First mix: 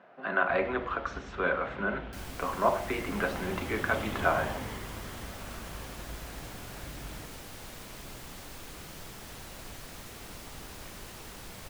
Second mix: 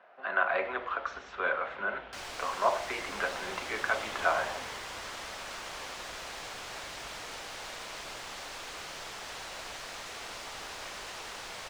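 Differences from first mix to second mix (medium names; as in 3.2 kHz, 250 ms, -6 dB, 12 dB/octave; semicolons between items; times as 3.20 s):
second sound +7.0 dB; master: add three-band isolator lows -17 dB, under 470 Hz, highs -18 dB, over 7.8 kHz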